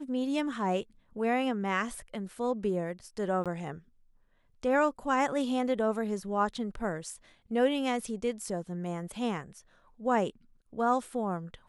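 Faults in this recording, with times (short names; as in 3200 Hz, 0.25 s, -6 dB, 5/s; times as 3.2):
3.44–3.46 gap 17 ms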